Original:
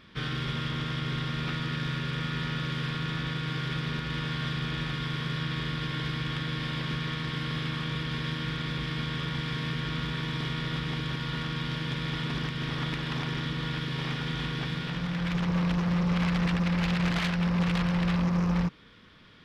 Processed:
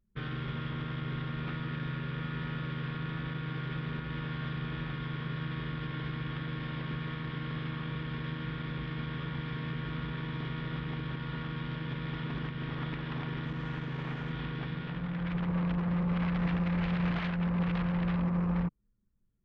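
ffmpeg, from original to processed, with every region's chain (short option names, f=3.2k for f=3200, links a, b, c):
-filter_complex "[0:a]asettb=1/sr,asplit=3[a][b][c];[a]atrim=end=13.454[d];[b]atrim=start=13.45:end=14.32,asetpts=PTS-STARTPTS,afade=t=in:d=0.004:c=qsin,afade=t=out:st=0.866:d=0.004:c=qsin,lowpass=3.3k,acrusher=bits=5:mix=0:aa=0.5[e];[c]atrim=start=14.316[f];[d][e]acrossfade=d=0.004:c1=hsin:c2=qsin[g];[g][f]acrossfade=d=0.004:c1=qsin:c2=hsin,asettb=1/sr,asplit=3[h][i][j];[h]atrim=end=16.384[k];[i]atrim=start=16.38:end=17.18,asetpts=PTS-STARTPTS,afade=t=in:d=0.004:c=qsin,afade=t=out:st=0.796:d=0.004:c=qsin,acrusher=bits=6:mode=log:mix=0:aa=0.000001,asplit=2[l][m];[m]adelay=33,volume=-9dB[n];[l][n]amix=inputs=2:normalize=0,atrim=end_sample=35280[o];[j]atrim=start=17.176[p];[k][o]acrossfade=d=0.004:c1=hsin:c2=qsin[q];[q][p]acrossfade=d=0.004:c1=qsin:c2=hsin,anlmdn=1.58,lowpass=3.9k,aemphasis=mode=reproduction:type=75fm,volume=-4.5dB"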